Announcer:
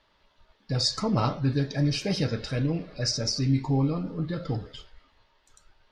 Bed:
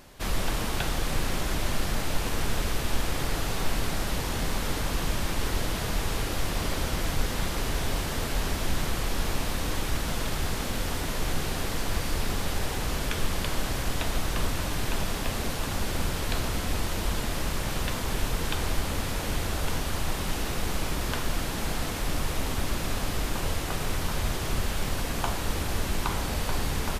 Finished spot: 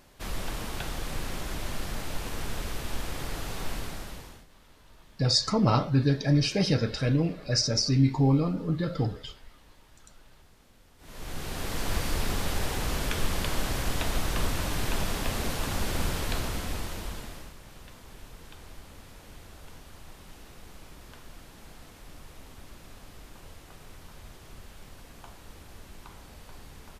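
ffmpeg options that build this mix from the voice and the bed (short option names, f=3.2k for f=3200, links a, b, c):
-filter_complex "[0:a]adelay=4500,volume=2dB[a];[1:a]volume=22.5dB,afade=t=out:st=3.72:d=0.74:silence=0.0707946,afade=t=in:st=10.98:d=0.94:silence=0.0375837,afade=t=out:st=16.1:d=1.45:silence=0.11885[b];[a][b]amix=inputs=2:normalize=0"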